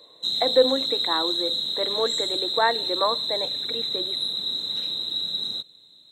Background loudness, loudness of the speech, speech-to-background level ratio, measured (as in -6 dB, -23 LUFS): -24.5 LUFS, -27.0 LUFS, -2.5 dB